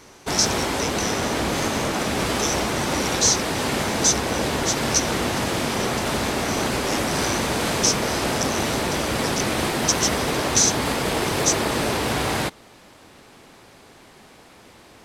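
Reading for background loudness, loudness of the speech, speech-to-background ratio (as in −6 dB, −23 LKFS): −23.5 LKFS, −25.0 LKFS, −1.5 dB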